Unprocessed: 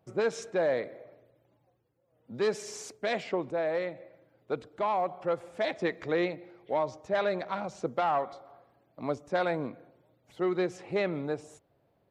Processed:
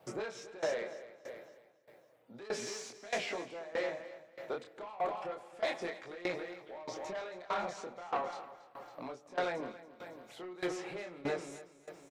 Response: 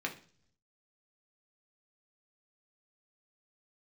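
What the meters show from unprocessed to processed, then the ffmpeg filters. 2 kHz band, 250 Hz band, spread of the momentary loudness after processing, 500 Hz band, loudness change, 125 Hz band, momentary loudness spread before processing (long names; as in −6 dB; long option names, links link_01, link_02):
−4.5 dB, −9.5 dB, 14 LU, −8.5 dB, −8.0 dB, −12.0 dB, 10 LU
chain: -filter_complex "[0:a]acrossover=split=5700[link_01][link_02];[link_02]acompressor=threshold=-58dB:ratio=4:attack=1:release=60[link_03];[link_01][link_03]amix=inputs=2:normalize=0,highpass=frequency=660:poles=1,asplit=2[link_04][link_05];[link_05]alimiter=level_in=7.5dB:limit=-24dB:level=0:latency=1:release=22,volume=-7.5dB,volume=0dB[link_06];[link_04][link_06]amix=inputs=2:normalize=0,acompressor=threshold=-44dB:ratio=2,flanger=delay=22.5:depth=6.4:speed=0.32,asoftclip=type=tanh:threshold=-38dB,aecho=1:1:277|554|831|1108|1385|1662:0.398|0.191|0.0917|0.044|0.0211|0.0101,aeval=exprs='val(0)*pow(10,-19*if(lt(mod(1.6*n/s,1),2*abs(1.6)/1000),1-mod(1.6*n/s,1)/(2*abs(1.6)/1000),(mod(1.6*n/s,1)-2*abs(1.6)/1000)/(1-2*abs(1.6)/1000))/20)':channel_layout=same,volume=12.5dB"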